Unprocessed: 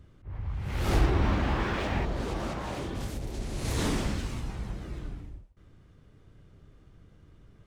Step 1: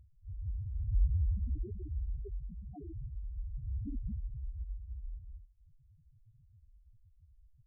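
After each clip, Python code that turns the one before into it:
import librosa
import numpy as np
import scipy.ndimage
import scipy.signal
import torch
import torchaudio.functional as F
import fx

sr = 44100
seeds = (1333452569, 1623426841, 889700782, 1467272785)

y = fx.spec_topn(x, sr, count=1)
y = y * librosa.db_to_amplitude(2.0)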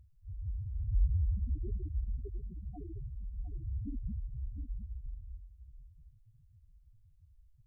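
y = x + 10.0 ** (-11.0 / 20.0) * np.pad(x, (int(708 * sr / 1000.0), 0))[:len(x)]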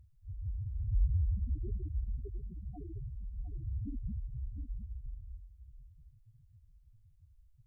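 y = fx.peak_eq(x, sr, hz=120.0, db=3.5, octaves=0.77)
y = y * librosa.db_to_amplitude(-1.0)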